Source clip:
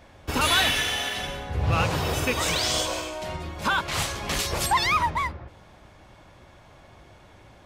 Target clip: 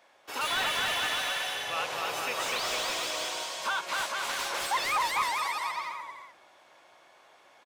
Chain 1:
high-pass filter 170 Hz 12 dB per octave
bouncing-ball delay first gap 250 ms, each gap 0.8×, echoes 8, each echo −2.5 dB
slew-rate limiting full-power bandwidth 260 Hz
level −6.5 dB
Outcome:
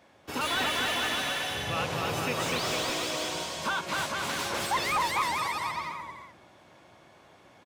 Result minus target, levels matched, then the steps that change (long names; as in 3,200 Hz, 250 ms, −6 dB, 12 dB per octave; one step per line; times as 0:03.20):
125 Hz band +15.0 dB
change: high-pass filter 590 Hz 12 dB per octave